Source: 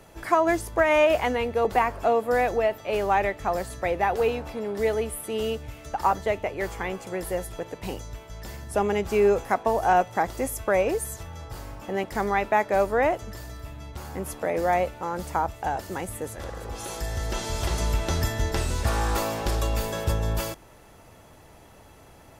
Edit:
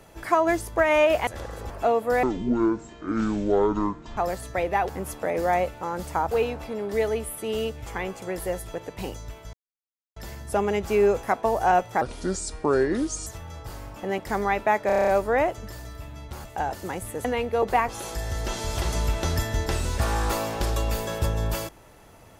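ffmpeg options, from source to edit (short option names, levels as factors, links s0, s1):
-filter_complex "[0:a]asplit=21[s0][s1][s2][s3][s4][s5][s6][s7][s8][s9][s10][s11][s12][s13][s14][s15][s16][s17][s18][s19][s20];[s0]atrim=end=1.272[s21];[s1]atrim=start=16.308:end=16.742[s22];[s2]atrim=start=1.908:end=2.444[s23];[s3]atrim=start=2.44:end=3.45,asetpts=PTS-STARTPTS,asetrate=22932,aresample=44100[s24];[s4]atrim=start=3.446:end=4.172[s25];[s5]atrim=start=14.088:end=15.512[s26];[s6]atrim=start=4.168:end=5.722[s27];[s7]atrim=start=6.708:end=8.38,asetpts=PTS-STARTPTS,afade=t=out:st=1.668:d=0.004:c=hsin,apad=pad_dur=0.63[s28];[s8]atrim=start=8.38:end=10.234,asetpts=PTS-STARTPTS,afade=t=in:d=0.004:c=hsin[s29];[s9]atrim=start=10.23:end=11.12,asetpts=PTS-STARTPTS,asetrate=31311,aresample=44100,atrim=end_sample=55280,asetpts=PTS-STARTPTS[s30];[s10]atrim=start=11.116:end=12.752[s31];[s11]atrim=start=12.718:end=12.752[s32];[s12]atrim=start=12.718:end=12.752[s33];[s13]atrim=start=12.718:end=12.752[s34];[s14]atrim=start=12.718:end=12.752[s35];[s15]atrim=start=12.718:end=12.752[s36];[s16]atrim=start=12.718:end=12.752[s37];[s17]atrim=start=12.718:end=14.092[s38];[s18]atrim=start=15.508:end=16.312[s39];[s19]atrim=start=1.268:end=1.912[s40];[s20]atrim=start=16.738[s41];[s21][s22]acrossfade=d=0.004:c1=hsin:c2=hsin[s42];[s42][s23]acrossfade=d=0.004:c1=hsin:c2=hsin[s43];[s43][s24]acrossfade=d=0.004:c1=hsin:c2=hsin[s44];[s44][s25]acrossfade=d=0.004:c1=hsin:c2=hsin[s45];[s45][s26]acrossfade=d=0.004:c1=hsin:c2=hsin[s46];[s46][s27]acrossfade=d=0.004:c1=hsin:c2=hsin[s47];[s28][s29]concat=n=2:v=0:a=1[s48];[s47][s48]acrossfade=d=0.004:c1=hsin:c2=hsin[s49];[s49][s30]acrossfade=d=0.004:c1=hsin:c2=hsin[s50];[s50][s31]acrossfade=d=0.004:c1=hsin:c2=hsin[s51];[s51][s32]acrossfade=d=0.004:c1=hsin:c2=hsin[s52];[s52][s33]acrossfade=d=0.004:c1=hsin:c2=hsin[s53];[s53][s34]acrossfade=d=0.004:c1=hsin:c2=hsin[s54];[s54][s35]acrossfade=d=0.004:c1=hsin:c2=hsin[s55];[s55][s36]acrossfade=d=0.004:c1=hsin:c2=hsin[s56];[s56][s37]acrossfade=d=0.004:c1=hsin:c2=hsin[s57];[s57][s38]acrossfade=d=0.004:c1=hsin:c2=hsin[s58];[s58][s39]acrossfade=d=0.004:c1=hsin:c2=hsin[s59];[s59][s40]acrossfade=d=0.004:c1=hsin:c2=hsin[s60];[s60][s41]acrossfade=d=0.004:c1=hsin:c2=hsin"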